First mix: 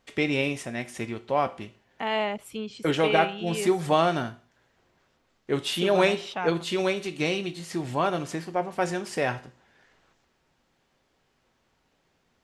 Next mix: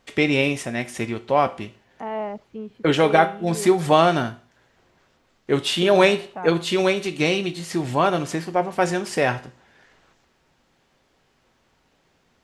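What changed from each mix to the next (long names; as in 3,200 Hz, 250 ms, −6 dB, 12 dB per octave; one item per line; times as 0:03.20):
first voice +6.0 dB
second voice: add low-pass filter 1,100 Hz 12 dB per octave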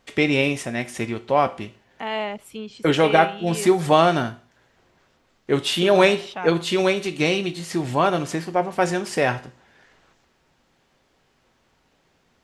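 second voice: remove low-pass filter 1,100 Hz 12 dB per octave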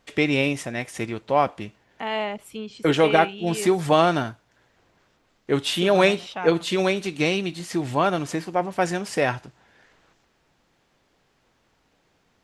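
reverb: off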